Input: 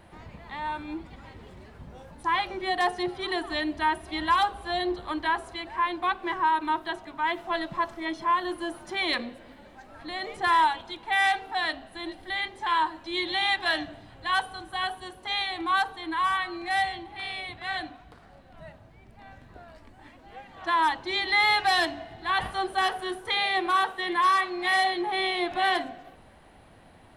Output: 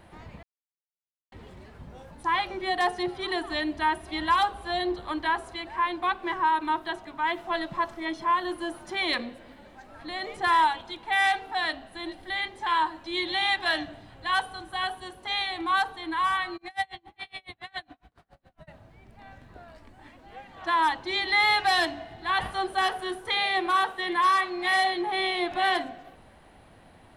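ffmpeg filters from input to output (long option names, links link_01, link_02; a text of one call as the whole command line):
ffmpeg -i in.wav -filter_complex "[0:a]asplit=3[link_01][link_02][link_03];[link_01]afade=type=out:start_time=16.56:duration=0.02[link_04];[link_02]aeval=exprs='val(0)*pow(10,-35*(0.5-0.5*cos(2*PI*7.2*n/s))/20)':channel_layout=same,afade=type=in:start_time=16.56:duration=0.02,afade=type=out:start_time=18.67:duration=0.02[link_05];[link_03]afade=type=in:start_time=18.67:duration=0.02[link_06];[link_04][link_05][link_06]amix=inputs=3:normalize=0,asplit=3[link_07][link_08][link_09];[link_07]atrim=end=0.43,asetpts=PTS-STARTPTS,afade=type=out:start_time=0.426:duration=0.004:curve=hsin[link_10];[link_08]atrim=start=0.43:end=1.32,asetpts=PTS-STARTPTS,volume=0[link_11];[link_09]atrim=start=1.32,asetpts=PTS-STARTPTS,afade=type=in:duration=0.004:curve=hsin[link_12];[link_10][link_11][link_12]concat=n=3:v=0:a=1" out.wav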